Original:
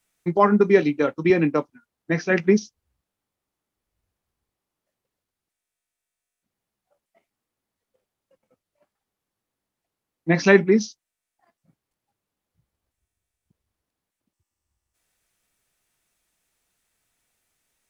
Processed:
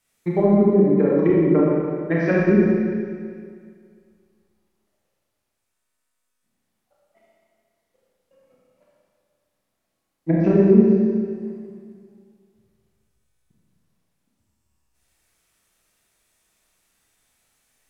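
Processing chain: treble ducked by the level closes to 310 Hz, closed at -14.5 dBFS; Schroeder reverb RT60 2.1 s, combs from 28 ms, DRR -5.5 dB

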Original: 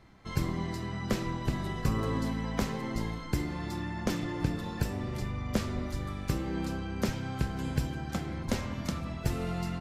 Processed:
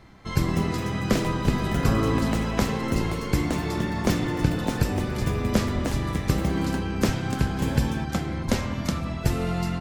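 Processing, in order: echoes that change speed 0.275 s, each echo +4 st, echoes 2, each echo -6 dB; gain +7 dB

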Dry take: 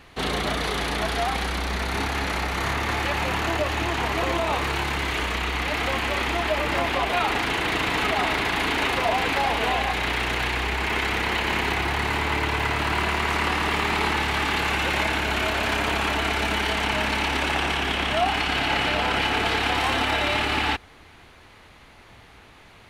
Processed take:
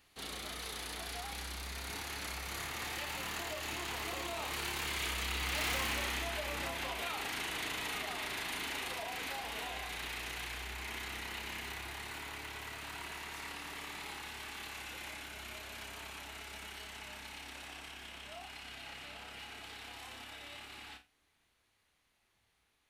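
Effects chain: Doppler pass-by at 5.75, 8 m/s, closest 1.7 m; flutter echo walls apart 8.3 m, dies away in 0.23 s; in parallel at -6 dB: wavefolder -23.5 dBFS; on the sum: flutter echo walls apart 5.3 m, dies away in 0.2 s; compressor 4:1, threshold -43 dBFS, peak gain reduction 19 dB; pre-emphasis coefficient 0.8; gain +16.5 dB

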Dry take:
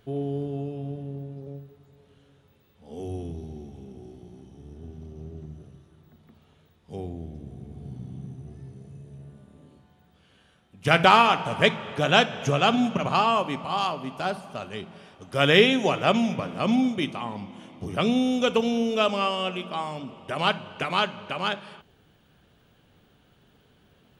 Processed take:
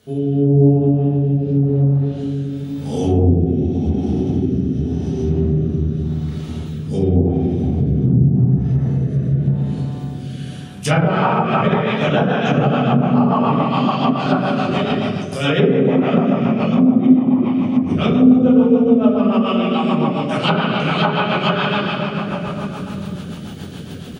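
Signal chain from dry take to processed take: spectral gain 8.71–9.16, 440–2200 Hz +8 dB; on a send: echo 0.224 s -13.5 dB; on the sum: shoebox room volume 140 m³, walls hard, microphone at 1.4 m; rotary speaker horn 0.9 Hz, later 7 Hz, at 10.92; AGC gain up to 11 dB; HPF 98 Hz 12 dB/oct; tone controls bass +6 dB, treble +13 dB; treble ducked by the level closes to 880 Hz, closed at -7 dBFS; in parallel at +1.5 dB: compressor, threshold -24 dBFS, peak gain reduction 19.5 dB; on the sum: gain -4 dB

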